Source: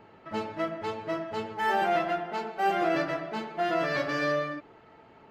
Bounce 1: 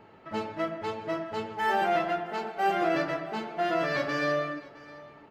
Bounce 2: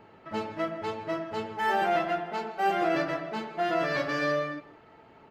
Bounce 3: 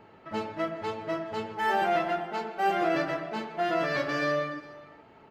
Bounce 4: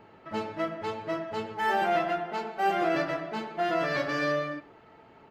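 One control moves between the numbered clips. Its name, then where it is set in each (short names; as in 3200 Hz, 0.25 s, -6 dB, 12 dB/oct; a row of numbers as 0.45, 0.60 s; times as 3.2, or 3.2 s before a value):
echo, time: 664, 161, 411, 96 ms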